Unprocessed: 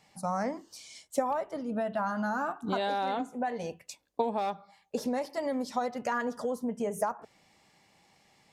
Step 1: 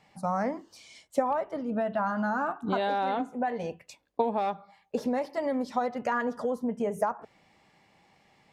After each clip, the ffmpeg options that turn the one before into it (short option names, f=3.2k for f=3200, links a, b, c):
-af "bass=f=250:g=0,treble=f=4k:g=-10,volume=2.5dB"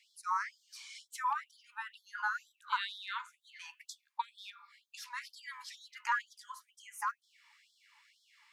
-af "bandreject=f=236.5:t=h:w=4,bandreject=f=473:t=h:w=4,bandreject=f=709.5:t=h:w=4,bandreject=f=946:t=h:w=4,bandreject=f=1.1825k:t=h:w=4,bandreject=f=1.419k:t=h:w=4,bandreject=f=1.6555k:t=h:w=4,bandreject=f=1.892k:t=h:w=4,bandreject=f=2.1285k:t=h:w=4,bandreject=f=2.365k:t=h:w=4,bandreject=f=2.6015k:t=h:w=4,afftfilt=real='re*gte(b*sr/1024,830*pow(3200/830,0.5+0.5*sin(2*PI*2.1*pts/sr)))':imag='im*gte(b*sr/1024,830*pow(3200/830,0.5+0.5*sin(2*PI*2.1*pts/sr)))':win_size=1024:overlap=0.75,volume=2dB"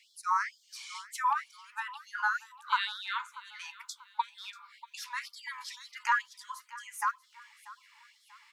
-af "aecho=1:1:638|1276|1914:0.119|0.044|0.0163,volume=5dB"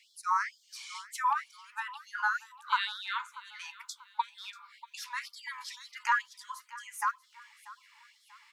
-af anull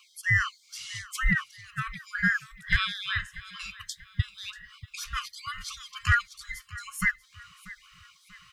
-af "afftfilt=real='real(if(between(b,1,1008),(2*floor((b-1)/48)+1)*48-b,b),0)':imag='imag(if(between(b,1,1008),(2*floor((b-1)/48)+1)*48-b,b),0)*if(between(b,1,1008),-1,1)':win_size=2048:overlap=0.75,asoftclip=type=hard:threshold=-17dB,volume=5dB"